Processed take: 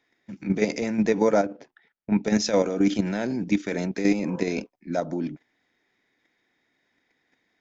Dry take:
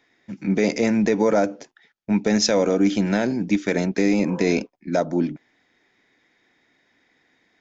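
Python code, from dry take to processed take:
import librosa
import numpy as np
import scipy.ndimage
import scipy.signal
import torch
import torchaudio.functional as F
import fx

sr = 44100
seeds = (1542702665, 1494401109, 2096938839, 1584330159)

y = fx.bessel_lowpass(x, sr, hz=2600.0, order=2, at=(1.43, 2.23))
y = fx.level_steps(y, sr, step_db=9)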